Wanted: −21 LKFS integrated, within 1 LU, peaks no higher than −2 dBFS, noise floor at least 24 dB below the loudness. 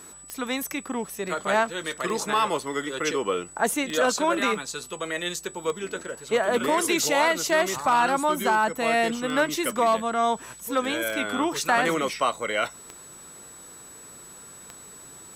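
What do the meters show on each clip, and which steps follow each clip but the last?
number of clicks 9; interfering tone 7,900 Hz; level of the tone −44 dBFS; integrated loudness −25.0 LKFS; sample peak −12.0 dBFS; target loudness −21.0 LKFS
→ click removal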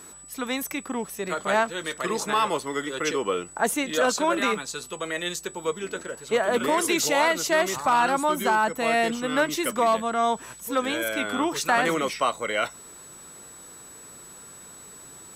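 number of clicks 0; interfering tone 7,900 Hz; level of the tone −44 dBFS
→ notch filter 7,900 Hz, Q 30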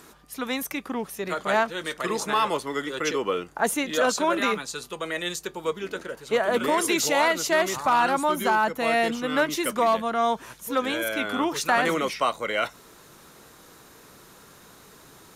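interfering tone none found; integrated loudness −25.0 LKFS; sample peak −12.0 dBFS; target loudness −21.0 LKFS
→ level +4 dB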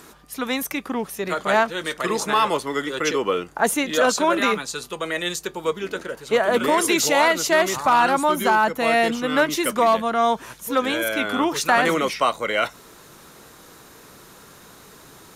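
integrated loudness −21.0 LKFS; sample peak −8.0 dBFS; background noise floor −47 dBFS

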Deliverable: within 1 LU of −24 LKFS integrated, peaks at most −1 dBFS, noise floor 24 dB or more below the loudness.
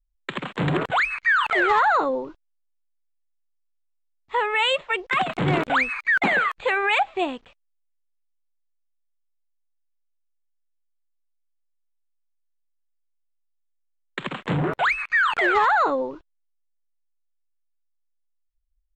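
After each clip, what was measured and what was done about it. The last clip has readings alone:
integrated loudness −21.5 LKFS; sample peak −11.5 dBFS; target loudness −24.0 LKFS
→ level −2.5 dB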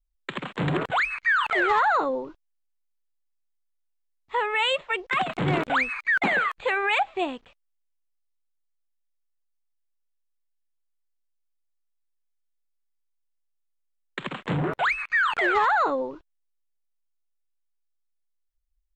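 integrated loudness −24.0 LKFS; sample peak −14.0 dBFS; background noise floor −74 dBFS

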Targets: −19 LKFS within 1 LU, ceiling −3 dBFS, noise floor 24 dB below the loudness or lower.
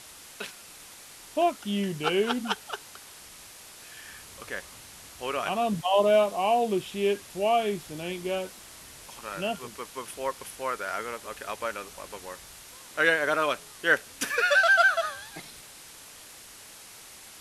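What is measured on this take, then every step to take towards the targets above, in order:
background noise floor −48 dBFS; target noise floor −51 dBFS; integrated loudness −27.0 LKFS; sample peak −9.0 dBFS; target loudness −19.0 LKFS
→ noise reduction from a noise print 6 dB
level +8 dB
brickwall limiter −3 dBFS

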